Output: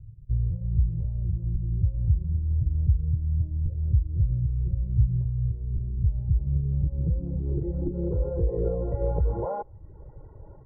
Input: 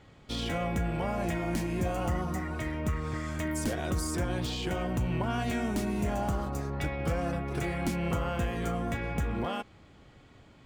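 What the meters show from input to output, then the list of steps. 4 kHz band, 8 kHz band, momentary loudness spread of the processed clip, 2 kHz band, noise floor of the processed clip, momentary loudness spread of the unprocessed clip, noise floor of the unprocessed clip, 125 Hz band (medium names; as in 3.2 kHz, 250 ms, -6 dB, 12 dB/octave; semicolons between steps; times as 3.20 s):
under -40 dB, under -40 dB, 5 LU, under -25 dB, -46 dBFS, 3 LU, -56 dBFS, +8.5 dB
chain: in parallel at -7 dB: bit crusher 6-bit; on the sum: compression, threshold -29 dBFS, peak gain reduction 7 dB; dynamic bell 660 Hz, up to +5 dB, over -46 dBFS, Q 1.1; reverb removal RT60 0.59 s; Chebyshev low-pass 2.1 kHz, order 6; tilt EQ -3.5 dB/octave; comb 2.1 ms, depth 91%; reverse; upward compressor, threshold -31 dBFS; reverse; low-pass sweep 120 Hz -> 800 Hz, 6.13–9.43 s; trim -6 dB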